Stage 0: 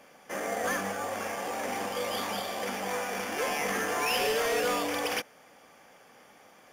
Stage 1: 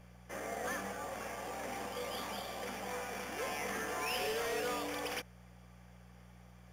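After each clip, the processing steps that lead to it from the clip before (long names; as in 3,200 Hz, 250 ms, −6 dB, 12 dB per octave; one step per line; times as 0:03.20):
hum with harmonics 60 Hz, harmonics 3, −49 dBFS −1 dB per octave
level −8.5 dB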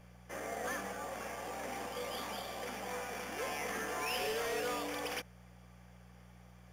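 mains-hum notches 50/100/150/200 Hz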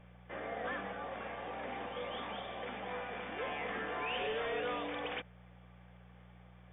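linear-phase brick-wall low-pass 3,700 Hz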